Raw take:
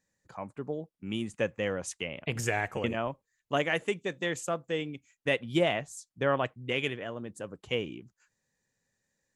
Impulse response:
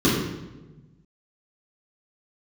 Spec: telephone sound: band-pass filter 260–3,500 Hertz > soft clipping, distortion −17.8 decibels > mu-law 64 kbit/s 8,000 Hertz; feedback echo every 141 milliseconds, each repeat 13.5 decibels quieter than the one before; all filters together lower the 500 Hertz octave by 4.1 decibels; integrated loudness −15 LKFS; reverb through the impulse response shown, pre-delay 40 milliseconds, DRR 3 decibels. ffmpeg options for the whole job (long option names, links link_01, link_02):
-filter_complex "[0:a]equalizer=frequency=500:width_type=o:gain=-4.5,aecho=1:1:141|282:0.211|0.0444,asplit=2[link_01][link_02];[1:a]atrim=start_sample=2205,adelay=40[link_03];[link_02][link_03]afir=irnorm=-1:irlink=0,volume=-22dB[link_04];[link_01][link_04]amix=inputs=2:normalize=0,highpass=260,lowpass=3500,asoftclip=threshold=-18dB,volume=16.5dB" -ar 8000 -c:a pcm_mulaw